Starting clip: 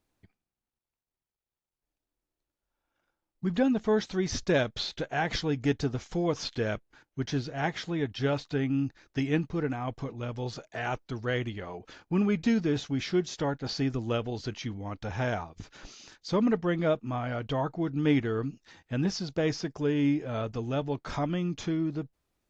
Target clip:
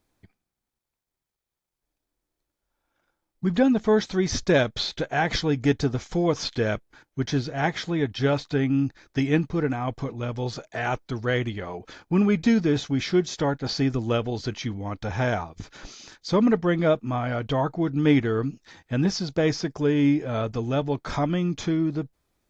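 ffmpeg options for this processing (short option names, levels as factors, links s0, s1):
-af "bandreject=f=2800:w=15,volume=1.88"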